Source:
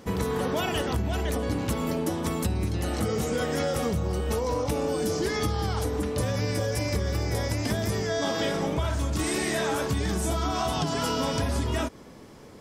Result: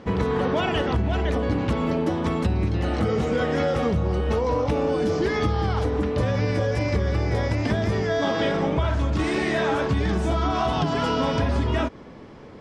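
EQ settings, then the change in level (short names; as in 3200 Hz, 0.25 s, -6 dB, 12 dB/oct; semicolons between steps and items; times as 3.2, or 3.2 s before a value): LPF 3200 Hz 12 dB/oct; +4.5 dB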